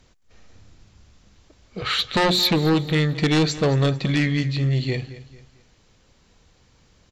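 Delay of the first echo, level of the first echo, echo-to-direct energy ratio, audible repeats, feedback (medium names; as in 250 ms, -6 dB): 222 ms, -16.5 dB, -16.0 dB, 3, 37%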